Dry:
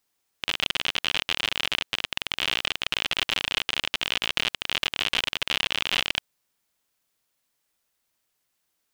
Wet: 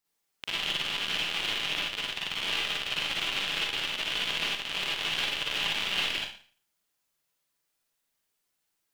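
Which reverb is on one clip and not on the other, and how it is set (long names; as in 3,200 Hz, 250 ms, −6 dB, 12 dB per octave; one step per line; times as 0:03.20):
four-comb reverb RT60 0.44 s, DRR −5.5 dB
level −9.5 dB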